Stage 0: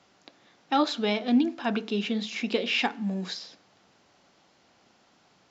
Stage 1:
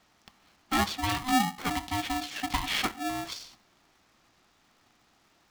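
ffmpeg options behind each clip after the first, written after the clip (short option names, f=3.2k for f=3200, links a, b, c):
-af "aeval=exprs='val(0)*sgn(sin(2*PI*510*n/s))':c=same,volume=-3dB"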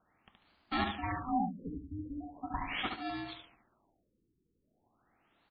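-af "aecho=1:1:72|144|216|288:0.562|0.169|0.0506|0.0152,afftfilt=real='re*lt(b*sr/1024,460*pow(5000/460,0.5+0.5*sin(2*PI*0.4*pts/sr)))':imag='im*lt(b*sr/1024,460*pow(5000/460,0.5+0.5*sin(2*PI*0.4*pts/sr)))':win_size=1024:overlap=0.75,volume=-7dB"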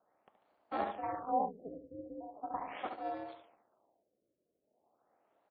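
-af "tremolo=f=230:d=0.75,bandpass=f=610:t=q:w=2.1:csg=0,volume=8dB"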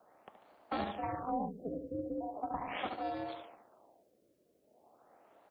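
-filter_complex "[0:a]acrossover=split=210|3000[a][b][c];[b]acompressor=threshold=-48dB:ratio=5[d];[a][d][c]amix=inputs=3:normalize=0,volume=11dB"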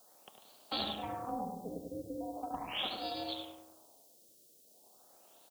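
-filter_complex "[0:a]aexciter=amount=10.1:drive=7.5:freq=3.1k,asplit=2[a][b];[b]adelay=100,lowpass=f=1.2k:p=1,volume=-4dB,asplit=2[c][d];[d]adelay=100,lowpass=f=1.2k:p=1,volume=0.55,asplit=2[e][f];[f]adelay=100,lowpass=f=1.2k:p=1,volume=0.55,asplit=2[g][h];[h]adelay=100,lowpass=f=1.2k:p=1,volume=0.55,asplit=2[i][j];[j]adelay=100,lowpass=f=1.2k:p=1,volume=0.55,asplit=2[k][l];[l]adelay=100,lowpass=f=1.2k:p=1,volume=0.55,asplit=2[m][n];[n]adelay=100,lowpass=f=1.2k:p=1,volume=0.55[o];[c][e][g][i][k][m][o]amix=inputs=7:normalize=0[p];[a][p]amix=inputs=2:normalize=0,volume=-4dB"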